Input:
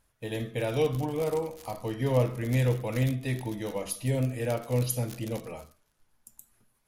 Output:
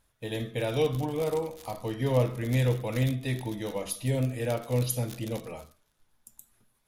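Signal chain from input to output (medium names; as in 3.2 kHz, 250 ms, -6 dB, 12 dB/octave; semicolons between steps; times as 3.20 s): peaking EQ 3.6 kHz +5.5 dB 0.22 oct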